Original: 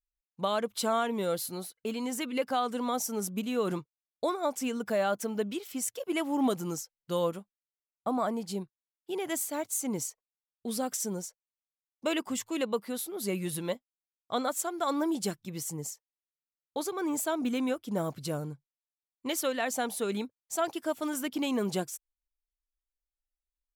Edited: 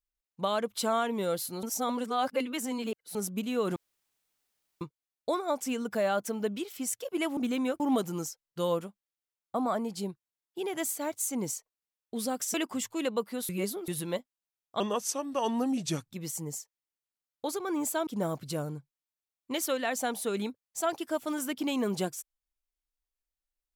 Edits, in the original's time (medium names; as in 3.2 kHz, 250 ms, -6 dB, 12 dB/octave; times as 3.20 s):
1.63–3.15 s: reverse
3.76 s: insert room tone 1.05 s
11.06–12.10 s: delete
13.05–13.44 s: reverse
14.36–15.38 s: speed 81%
17.39–17.82 s: move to 6.32 s